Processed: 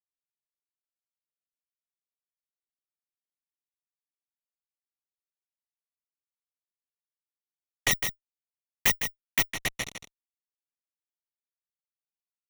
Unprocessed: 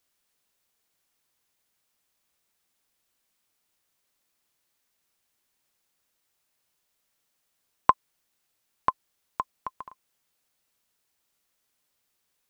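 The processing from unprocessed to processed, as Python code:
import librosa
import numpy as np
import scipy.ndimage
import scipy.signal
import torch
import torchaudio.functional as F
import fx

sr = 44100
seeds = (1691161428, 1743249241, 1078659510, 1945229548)

y = fx.octave_mirror(x, sr, pivot_hz=1400.0)
y = fx.high_shelf(y, sr, hz=2700.0, db=-5.5)
y = fx.hum_notches(y, sr, base_hz=50, count=4)
y = fx.fuzz(y, sr, gain_db=45.0, gate_db=-48.0)
y = fx.env_flanger(y, sr, rest_ms=8.7, full_db=-25.5)
y = y + 10.0 ** (-8.0 / 20.0) * np.pad(y, (int(157 * sr / 1000.0), 0))[:len(y)]
y = fx.resample_bad(y, sr, factor=2, down='none', up='zero_stuff', at=(7.91, 9.52))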